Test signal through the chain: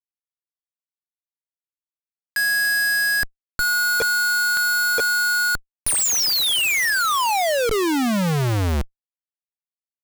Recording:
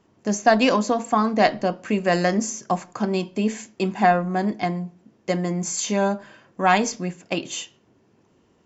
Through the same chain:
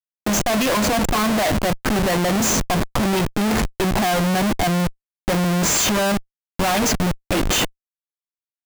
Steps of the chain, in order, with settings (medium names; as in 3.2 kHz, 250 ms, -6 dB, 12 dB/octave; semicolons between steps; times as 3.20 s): band-stop 450 Hz, Q 12; dynamic bell 250 Hz, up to -4 dB, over -37 dBFS, Q 1.4; Schmitt trigger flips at -33 dBFS; trim +6 dB